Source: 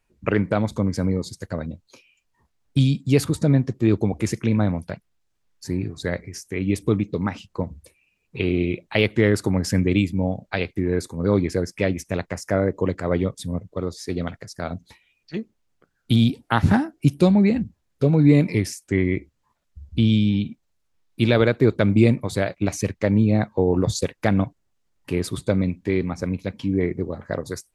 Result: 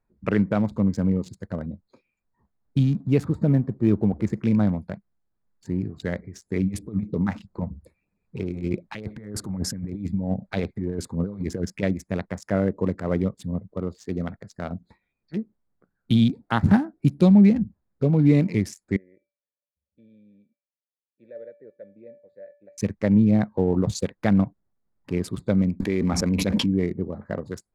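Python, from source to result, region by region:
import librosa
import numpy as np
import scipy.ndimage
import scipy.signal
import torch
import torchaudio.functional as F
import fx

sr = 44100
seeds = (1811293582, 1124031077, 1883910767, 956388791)

y = fx.chain(x, sr, fx.law_mismatch(coded='mu'),
    fx.high_shelf(hz=3000.0, db=-9.0), at=(2.78, 4.41))
y = fx.chain(y, sr, fx.over_compress(threshold_db=-24.0, ratio=-0.5),
    fx.filter_lfo_notch(shape='sine', hz=3.2, low_hz=300.0, high_hz=3000.0, q=1.4), at=(6.47, 11.83))
y = fx.chain(y, sr, fx.vowel_filter(vowel='e'),
    fx.comb_fb(f0_hz=580.0, decay_s=0.39, harmonics='all', damping=0.0, mix_pct=80), at=(18.96, 22.78))
y = fx.chain(y, sr, fx.peak_eq(hz=130.0, db=-8.5, octaves=0.8),
    fx.notch(hz=6200.0, q=26.0),
    fx.env_flatten(amount_pct=100), at=(25.8, 26.66))
y = fx.wiener(y, sr, points=15)
y = fx.peak_eq(y, sr, hz=200.0, db=7.0, octaves=0.42)
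y = F.gain(torch.from_numpy(y), -3.5).numpy()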